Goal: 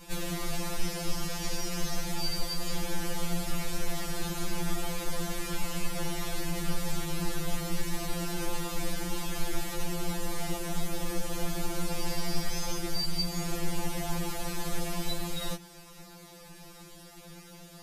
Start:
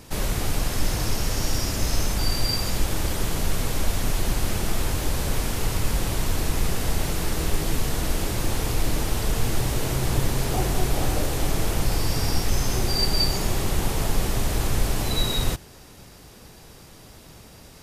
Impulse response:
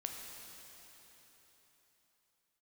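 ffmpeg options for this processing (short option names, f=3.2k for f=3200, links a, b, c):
-filter_complex "[0:a]acrossover=split=87|200|7100[a][b][c][d];[a]acompressor=threshold=-27dB:ratio=4[e];[b]acompressor=threshold=-35dB:ratio=4[f];[c]acompressor=threshold=-33dB:ratio=4[g];[d]acompressor=threshold=-42dB:ratio=4[h];[e][f][g][h]amix=inputs=4:normalize=0,afftfilt=real='re*2.83*eq(mod(b,8),0)':imag='im*2.83*eq(mod(b,8),0)':win_size=2048:overlap=0.75"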